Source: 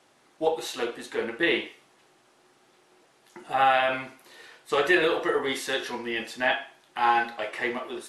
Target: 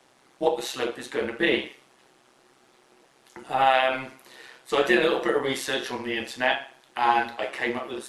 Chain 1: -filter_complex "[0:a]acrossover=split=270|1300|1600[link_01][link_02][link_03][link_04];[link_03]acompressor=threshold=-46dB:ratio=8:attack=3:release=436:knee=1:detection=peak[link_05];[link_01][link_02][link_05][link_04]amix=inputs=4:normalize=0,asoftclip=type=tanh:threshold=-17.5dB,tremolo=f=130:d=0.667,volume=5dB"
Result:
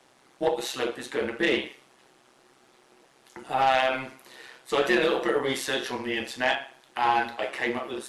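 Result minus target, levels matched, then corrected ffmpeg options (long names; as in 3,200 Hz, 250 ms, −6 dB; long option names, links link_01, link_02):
soft clipping: distortion +19 dB
-filter_complex "[0:a]acrossover=split=270|1300|1600[link_01][link_02][link_03][link_04];[link_03]acompressor=threshold=-46dB:ratio=8:attack=3:release=436:knee=1:detection=peak[link_05];[link_01][link_02][link_05][link_04]amix=inputs=4:normalize=0,asoftclip=type=tanh:threshold=-6dB,tremolo=f=130:d=0.667,volume=5dB"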